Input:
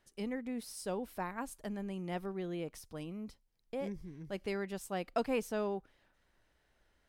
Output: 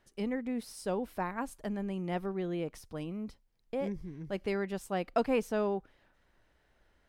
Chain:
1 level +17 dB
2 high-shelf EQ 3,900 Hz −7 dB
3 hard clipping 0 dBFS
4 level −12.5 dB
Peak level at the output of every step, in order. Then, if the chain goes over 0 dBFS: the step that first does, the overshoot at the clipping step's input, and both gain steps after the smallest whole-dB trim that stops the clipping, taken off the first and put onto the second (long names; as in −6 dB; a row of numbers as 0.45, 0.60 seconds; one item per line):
−4.0, −4.5, −4.5, −17.0 dBFS
no step passes full scale